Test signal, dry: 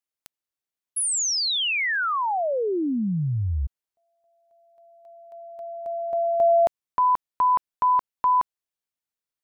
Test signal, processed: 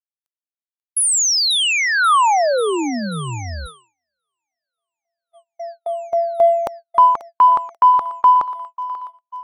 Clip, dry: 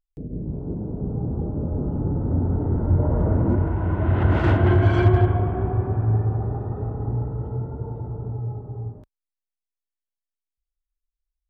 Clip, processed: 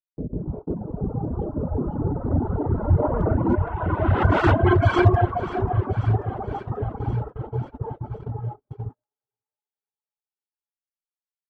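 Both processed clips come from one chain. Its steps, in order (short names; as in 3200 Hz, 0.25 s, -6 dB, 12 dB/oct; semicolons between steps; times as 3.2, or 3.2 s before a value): high shelf 2100 Hz +4.5 dB; reverb removal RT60 0.98 s; in parallel at -11.5 dB: soft clip -23 dBFS; on the sum: EQ curve 170 Hz 0 dB, 1200 Hz +8 dB, 1800 Hz +1 dB; reverb removal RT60 1.5 s; on a send: thinning echo 0.538 s, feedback 68%, high-pass 620 Hz, level -14 dB; on the sum: gate -33 dBFS, range -42 dB; gain +1.5 dB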